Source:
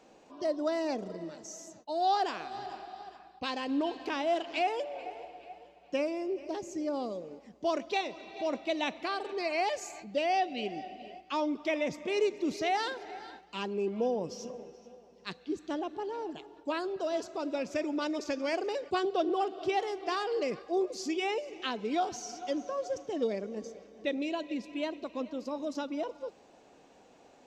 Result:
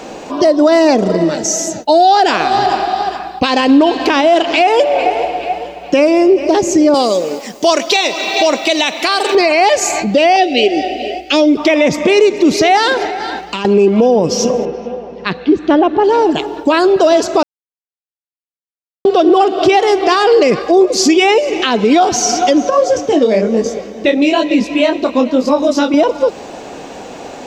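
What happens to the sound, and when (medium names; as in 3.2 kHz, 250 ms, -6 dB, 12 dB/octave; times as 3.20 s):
1.34–2.31 s: Butterworth band-stop 1.1 kHz, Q 4.1
6.94–9.35 s: RIAA curve recording
10.36–11.57 s: static phaser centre 430 Hz, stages 4
13.06–13.65 s: compression 16:1, threshold -45 dBFS
14.65–16.04 s: low-pass 2.7 kHz
17.43–19.05 s: mute
22.70–25.94 s: detune thickener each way 36 cents
whole clip: compression 2:1, threshold -39 dBFS; loudness maximiser +30.5 dB; trim -1 dB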